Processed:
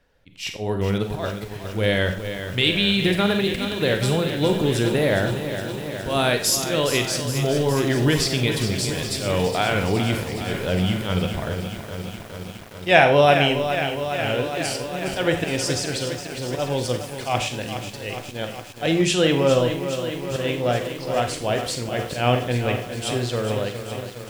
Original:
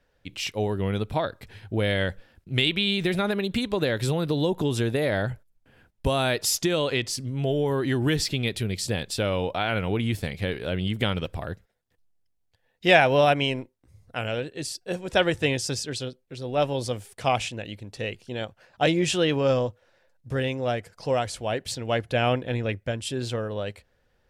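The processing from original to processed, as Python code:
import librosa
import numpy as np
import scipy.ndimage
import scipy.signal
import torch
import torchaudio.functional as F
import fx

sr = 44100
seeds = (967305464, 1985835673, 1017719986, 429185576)

y = x + 10.0 ** (-20.0 / 20.0) * np.pad(x, (int(92 * sr / 1000.0), 0))[:len(x)]
y = fx.auto_swell(y, sr, attack_ms=127.0)
y = fx.rev_schroeder(y, sr, rt60_s=0.39, comb_ms=33, drr_db=7.0)
y = fx.echo_crushed(y, sr, ms=414, feedback_pct=80, bits=7, wet_db=-9)
y = F.gain(torch.from_numpy(y), 3.5).numpy()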